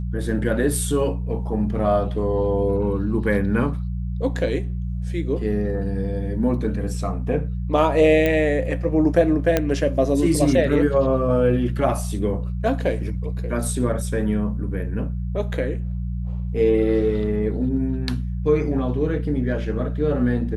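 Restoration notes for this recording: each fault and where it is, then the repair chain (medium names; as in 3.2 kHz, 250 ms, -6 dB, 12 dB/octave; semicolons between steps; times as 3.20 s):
hum 60 Hz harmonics 3 -26 dBFS
8.26 s: pop -9 dBFS
9.57 s: pop -5 dBFS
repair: de-click; de-hum 60 Hz, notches 3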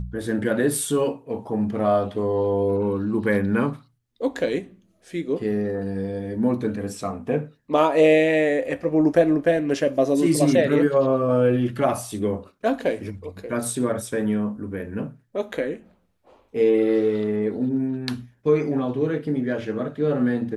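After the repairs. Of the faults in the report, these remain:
nothing left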